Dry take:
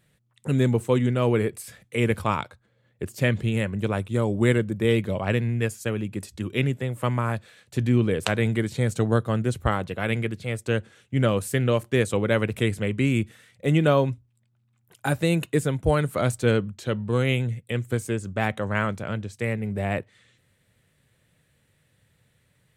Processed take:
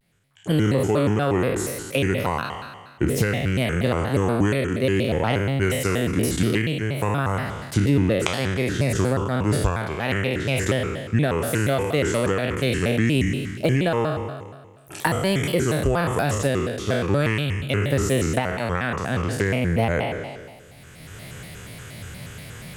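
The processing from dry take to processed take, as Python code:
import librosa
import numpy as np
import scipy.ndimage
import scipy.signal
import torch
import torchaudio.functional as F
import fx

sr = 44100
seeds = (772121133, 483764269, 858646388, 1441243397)

p1 = fx.spec_trails(x, sr, decay_s=1.03)
p2 = fx.recorder_agc(p1, sr, target_db=-4.5, rise_db_per_s=18.0, max_gain_db=30)
p3 = 10.0 ** (-7.0 / 20.0) * np.tanh(p2 / 10.0 ** (-7.0 / 20.0))
p4 = p2 + (p3 * 10.0 ** (-4.0 / 20.0))
p5 = fx.vibrato_shape(p4, sr, shape='square', rate_hz=4.2, depth_cents=250.0)
y = p5 * 10.0 ** (-9.5 / 20.0)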